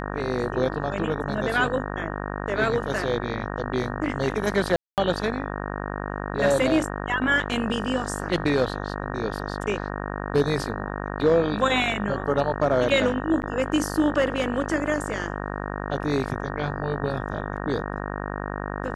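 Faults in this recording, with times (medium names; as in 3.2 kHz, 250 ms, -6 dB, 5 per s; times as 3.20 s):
buzz 50 Hz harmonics 37 -31 dBFS
4.76–4.98 s: dropout 218 ms
13.42–13.43 s: dropout 9.4 ms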